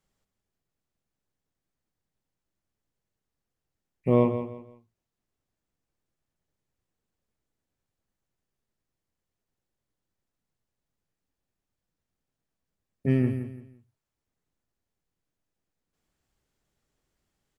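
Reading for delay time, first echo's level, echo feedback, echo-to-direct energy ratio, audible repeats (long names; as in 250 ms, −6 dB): 169 ms, −10.0 dB, 29%, −9.5 dB, 3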